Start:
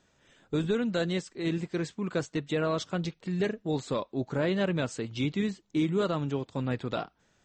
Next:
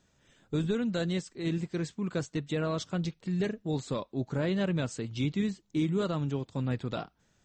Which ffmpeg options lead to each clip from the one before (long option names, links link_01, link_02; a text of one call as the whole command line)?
ffmpeg -i in.wav -af "bass=frequency=250:gain=6,treble=frequency=4000:gain=4,volume=-4dB" out.wav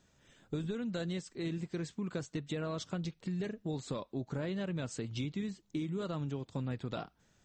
ffmpeg -i in.wav -af "acompressor=threshold=-34dB:ratio=6" out.wav